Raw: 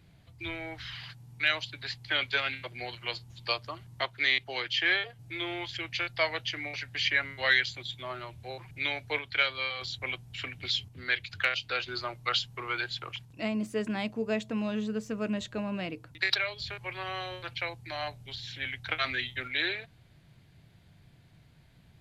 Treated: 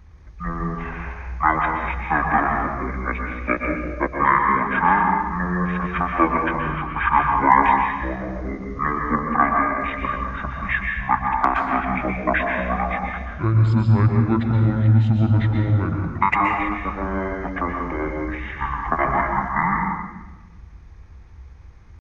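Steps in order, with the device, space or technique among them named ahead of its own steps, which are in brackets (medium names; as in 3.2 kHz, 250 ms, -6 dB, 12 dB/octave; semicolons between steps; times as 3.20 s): 6.57–7.22 s: low-pass 7.3 kHz 12 dB/octave; monster voice (pitch shift -11.5 st; bass shelf 240 Hz +7.5 dB; reverberation RT60 1.2 s, pre-delay 115 ms, DRR 1.5 dB); dynamic bell 960 Hz, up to +4 dB, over -41 dBFS, Q 3.4; trim +7 dB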